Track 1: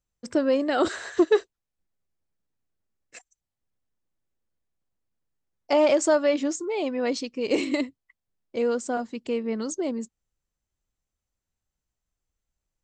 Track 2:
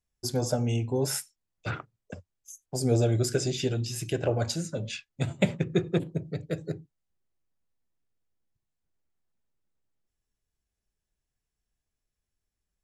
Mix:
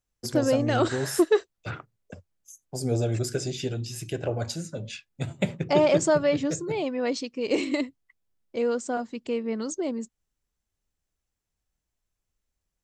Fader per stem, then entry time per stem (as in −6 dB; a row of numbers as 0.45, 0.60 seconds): −1.0, −2.0 decibels; 0.00, 0.00 seconds